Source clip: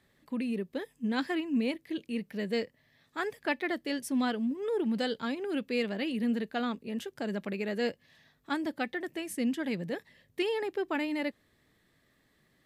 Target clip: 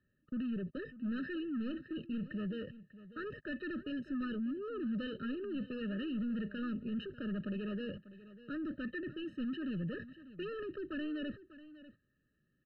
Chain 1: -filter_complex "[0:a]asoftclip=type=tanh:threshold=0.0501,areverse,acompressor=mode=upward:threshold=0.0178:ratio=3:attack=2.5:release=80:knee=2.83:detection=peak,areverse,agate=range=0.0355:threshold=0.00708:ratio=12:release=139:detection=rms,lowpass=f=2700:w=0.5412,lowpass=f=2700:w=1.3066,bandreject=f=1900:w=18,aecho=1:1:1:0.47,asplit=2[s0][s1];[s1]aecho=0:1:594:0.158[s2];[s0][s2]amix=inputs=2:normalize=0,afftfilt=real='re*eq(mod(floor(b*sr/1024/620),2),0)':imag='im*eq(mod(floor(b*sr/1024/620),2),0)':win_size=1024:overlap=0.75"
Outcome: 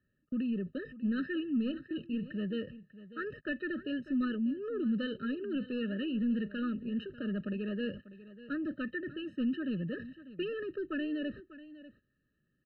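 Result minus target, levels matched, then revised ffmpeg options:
saturation: distortion -10 dB
-filter_complex "[0:a]asoftclip=type=tanh:threshold=0.0141,areverse,acompressor=mode=upward:threshold=0.0178:ratio=3:attack=2.5:release=80:knee=2.83:detection=peak,areverse,agate=range=0.0355:threshold=0.00708:ratio=12:release=139:detection=rms,lowpass=f=2700:w=0.5412,lowpass=f=2700:w=1.3066,bandreject=f=1900:w=18,aecho=1:1:1:0.47,asplit=2[s0][s1];[s1]aecho=0:1:594:0.158[s2];[s0][s2]amix=inputs=2:normalize=0,afftfilt=real='re*eq(mod(floor(b*sr/1024/620),2),0)':imag='im*eq(mod(floor(b*sr/1024/620),2),0)':win_size=1024:overlap=0.75"

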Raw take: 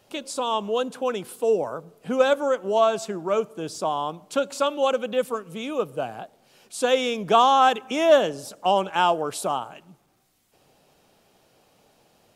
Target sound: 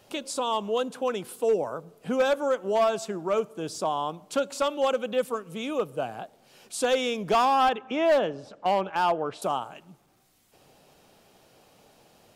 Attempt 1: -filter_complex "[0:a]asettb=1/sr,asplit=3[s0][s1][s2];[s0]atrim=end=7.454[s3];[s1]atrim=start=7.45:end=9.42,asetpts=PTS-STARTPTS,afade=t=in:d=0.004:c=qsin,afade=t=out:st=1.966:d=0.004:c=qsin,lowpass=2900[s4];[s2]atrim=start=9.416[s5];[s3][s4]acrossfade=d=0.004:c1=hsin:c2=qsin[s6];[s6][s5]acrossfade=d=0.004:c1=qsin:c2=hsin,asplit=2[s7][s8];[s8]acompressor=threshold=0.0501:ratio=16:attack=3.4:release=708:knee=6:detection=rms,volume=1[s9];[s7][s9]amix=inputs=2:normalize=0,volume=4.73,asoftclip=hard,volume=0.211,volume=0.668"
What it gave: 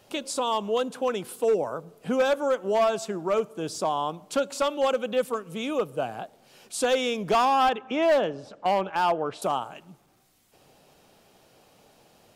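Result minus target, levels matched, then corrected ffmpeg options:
compression: peak gain reduction -6 dB
-filter_complex "[0:a]asettb=1/sr,asplit=3[s0][s1][s2];[s0]atrim=end=7.454[s3];[s1]atrim=start=7.45:end=9.42,asetpts=PTS-STARTPTS,afade=t=in:d=0.004:c=qsin,afade=t=out:st=1.966:d=0.004:c=qsin,lowpass=2900[s4];[s2]atrim=start=9.416[s5];[s3][s4]acrossfade=d=0.004:c1=hsin:c2=qsin[s6];[s6][s5]acrossfade=d=0.004:c1=qsin:c2=hsin,asplit=2[s7][s8];[s8]acompressor=threshold=0.0237:ratio=16:attack=3.4:release=708:knee=6:detection=rms,volume=1[s9];[s7][s9]amix=inputs=2:normalize=0,volume=4.73,asoftclip=hard,volume=0.211,volume=0.668"

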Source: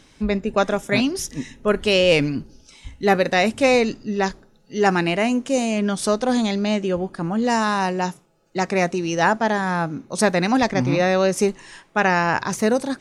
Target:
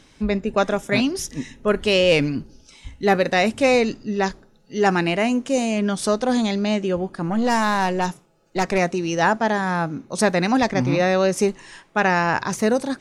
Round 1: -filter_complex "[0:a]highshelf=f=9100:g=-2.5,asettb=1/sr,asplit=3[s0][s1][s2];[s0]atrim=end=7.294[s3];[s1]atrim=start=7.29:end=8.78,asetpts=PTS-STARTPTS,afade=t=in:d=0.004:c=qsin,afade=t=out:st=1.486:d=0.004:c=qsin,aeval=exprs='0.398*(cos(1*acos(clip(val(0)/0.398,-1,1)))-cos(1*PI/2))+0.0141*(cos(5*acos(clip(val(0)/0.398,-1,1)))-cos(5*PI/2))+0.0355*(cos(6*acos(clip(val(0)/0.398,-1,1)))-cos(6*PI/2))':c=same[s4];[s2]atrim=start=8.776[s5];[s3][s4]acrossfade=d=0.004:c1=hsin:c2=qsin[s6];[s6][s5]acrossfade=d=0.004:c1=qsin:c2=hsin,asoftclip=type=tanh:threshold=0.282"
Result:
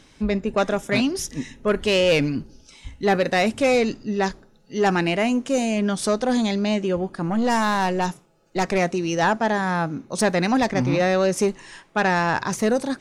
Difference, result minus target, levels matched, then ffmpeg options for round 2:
saturation: distortion +14 dB
-filter_complex "[0:a]highshelf=f=9100:g=-2.5,asettb=1/sr,asplit=3[s0][s1][s2];[s0]atrim=end=7.294[s3];[s1]atrim=start=7.29:end=8.78,asetpts=PTS-STARTPTS,afade=t=in:d=0.004:c=qsin,afade=t=out:st=1.486:d=0.004:c=qsin,aeval=exprs='0.398*(cos(1*acos(clip(val(0)/0.398,-1,1)))-cos(1*PI/2))+0.0141*(cos(5*acos(clip(val(0)/0.398,-1,1)))-cos(5*PI/2))+0.0355*(cos(6*acos(clip(val(0)/0.398,-1,1)))-cos(6*PI/2))':c=same[s4];[s2]atrim=start=8.776[s5];[s3][s4]acrossfade=d=0.004:c1=hsin:c2=qsin[s6];[s6][s5]acrossfade=d=0.004:c1=qsin:c2=hsin,asoftclip=type=tanh:threshold=0.75"

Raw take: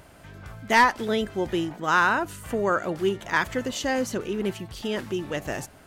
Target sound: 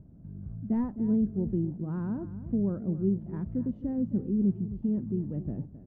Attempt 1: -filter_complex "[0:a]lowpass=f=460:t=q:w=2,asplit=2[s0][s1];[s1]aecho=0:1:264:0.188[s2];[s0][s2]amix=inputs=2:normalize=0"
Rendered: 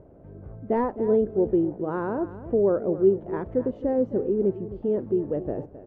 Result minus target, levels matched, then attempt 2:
500 Hz band +11.0 dB
-filter_complex "[0:a]lowpass=f=200:t=q:w=2,asplit=2[s0][s1];[s1]aecho=0:1:264:0.188[s2];[s0][s2]amix=inputs=2:normalize=0"

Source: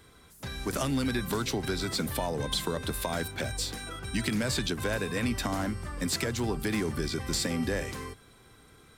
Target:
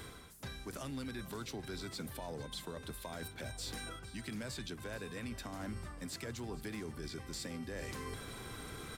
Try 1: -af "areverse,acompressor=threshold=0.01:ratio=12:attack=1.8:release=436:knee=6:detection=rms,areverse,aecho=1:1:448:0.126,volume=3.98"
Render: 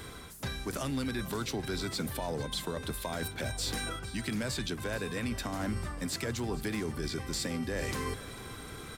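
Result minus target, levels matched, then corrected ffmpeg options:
compression: peak gain reduction -8.5 dB
-af "areverse,acompressor=threshold=0.00335:ratio=12:attack=1.8:release=436:knee=6:detection=rms,areverse,aecho=1:1:448:0.126,volume=3.98"

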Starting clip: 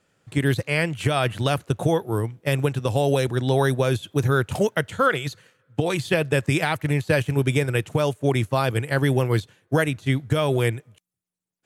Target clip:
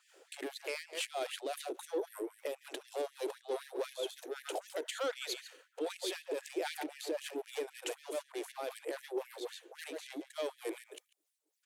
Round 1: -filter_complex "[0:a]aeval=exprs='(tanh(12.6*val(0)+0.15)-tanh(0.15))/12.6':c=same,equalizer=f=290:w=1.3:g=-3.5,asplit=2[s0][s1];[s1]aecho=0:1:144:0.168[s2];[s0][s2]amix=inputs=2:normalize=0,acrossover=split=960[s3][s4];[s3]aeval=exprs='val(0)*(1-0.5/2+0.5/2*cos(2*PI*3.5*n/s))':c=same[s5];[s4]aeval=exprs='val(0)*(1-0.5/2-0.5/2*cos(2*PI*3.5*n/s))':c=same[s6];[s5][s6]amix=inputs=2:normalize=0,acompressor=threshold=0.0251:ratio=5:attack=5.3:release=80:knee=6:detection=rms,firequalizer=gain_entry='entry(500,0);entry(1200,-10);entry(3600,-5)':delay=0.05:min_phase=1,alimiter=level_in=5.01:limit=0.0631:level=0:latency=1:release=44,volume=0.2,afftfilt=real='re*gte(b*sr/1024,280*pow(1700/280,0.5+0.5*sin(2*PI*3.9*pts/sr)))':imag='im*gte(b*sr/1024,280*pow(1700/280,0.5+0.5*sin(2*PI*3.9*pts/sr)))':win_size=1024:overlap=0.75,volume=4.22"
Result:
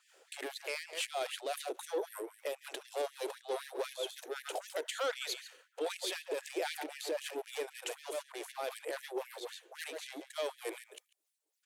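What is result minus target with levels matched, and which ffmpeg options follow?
250 Hz band -4.5 dB
-filter_complex "[0:a]aeval=exprs='(tanh(12.6*val(0)+0.15)-tanh(0.15))/12.6':c=same,equalizer=f=290:w=1.3:g=6.5,asplit=2[s0][s1];[s1]aecho=0:1:144:0.168[s2];[s0][s2]amix=inputs=2:normalize=0,acrossover=split=960[s3][s4];[s3]aeval=exprs='val(0)*(1-0.5/2+0.5/2*cos(2*PI*3.5*n/s))':c=same[s5];[s4]aeval=exprs='val(0)*(1-0.5/2-0.5/2*cos(2*PI*3.5*n/s))':c=same[s6];[s5][s6]amix=inputs=2:normalize=0,acompressor=threshold=0.0251:ratio=5:attack=5.3:release=80:knee=6:detection=rms,firequalizer=gain_entry='entry(500,0);entry(1200,-10);entry(3600,-5)':delay=0.05:min_phase=1,alimiter=level_in=5.01:limit=0.0631:level=0:latency=1:release=44,volume=0.2,afftfilt=real='re*gte(b*sr/1024,280*pow(1700/280,0.5+0.5*sin(2*PI*3.9*pts/sr)))':imag='im*gte(b*sr/1024,280*pow(1700/280,0.5+0.5*sin(2*PI*3.9*pts/sr)))':win_size=1024:overlap=0.75,volume=4.22"

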